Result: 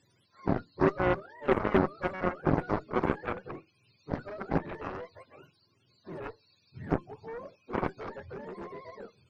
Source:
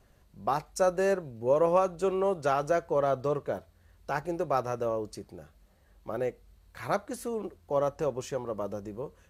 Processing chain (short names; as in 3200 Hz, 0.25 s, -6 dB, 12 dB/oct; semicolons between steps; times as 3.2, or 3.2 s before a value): spectrum mirrored in octaves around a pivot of 460 Hz; added harmonics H 2 -7 dB, 4 -19 dB, 6 -27 dB, 7 -12 dB, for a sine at -13.5 dBFS